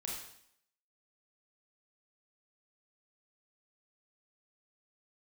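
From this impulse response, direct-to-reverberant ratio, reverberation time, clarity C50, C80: -3.0 dB, 0.70 s, 1.5 dB, 5.0 dB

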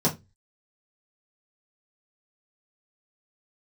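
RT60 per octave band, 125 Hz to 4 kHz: 0.40, 0.30, 0.25, 0.20, 0.20, 0.20 s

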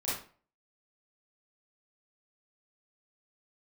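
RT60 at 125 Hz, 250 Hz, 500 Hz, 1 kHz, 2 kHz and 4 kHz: 0.40, 0.40, 0.40, 0.40, 0.35, 0.30 s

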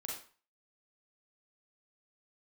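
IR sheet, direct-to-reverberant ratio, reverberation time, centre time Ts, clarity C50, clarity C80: -3.5 dB, 0.40 s, 43 ms, 2.0 dB, 7.5 dB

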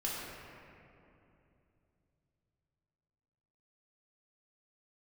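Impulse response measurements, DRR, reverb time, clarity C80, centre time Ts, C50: -6.5 dB, 2.8 s, -0.5 dB, 0.151 s, -2.0 dB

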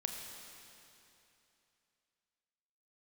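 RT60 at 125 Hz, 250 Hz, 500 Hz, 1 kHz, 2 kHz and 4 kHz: 3.0, 2.9, 2.9, 2.9, 2.9, 2.8 s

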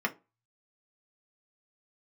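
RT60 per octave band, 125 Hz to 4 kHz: 0.50, 0.30, 0.30, 0.25, 0.20, 0.15 s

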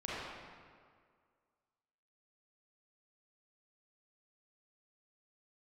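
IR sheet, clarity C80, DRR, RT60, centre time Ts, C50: -2.0 dB, -8.5 dB, 1.9 s, 0.143 s, -5.0 dB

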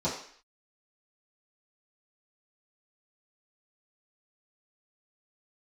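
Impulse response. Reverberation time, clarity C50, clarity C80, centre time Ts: 0.55 s, 5.5 dB, 9.0 dB, 36 ms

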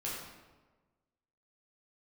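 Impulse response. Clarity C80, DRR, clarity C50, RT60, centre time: 3.0 dB, -6.5 dB, 0.0 dB, 1.3 s, 72 ms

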